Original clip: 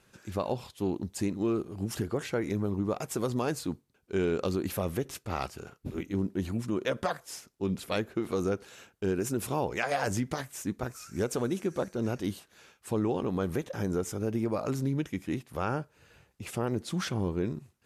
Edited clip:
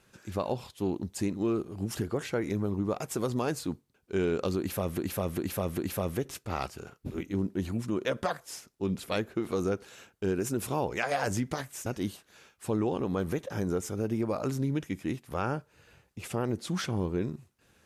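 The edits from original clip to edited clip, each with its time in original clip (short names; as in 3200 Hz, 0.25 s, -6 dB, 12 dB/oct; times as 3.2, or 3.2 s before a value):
4.58–4.98 loop, 4 plays
10.66–12.09 cut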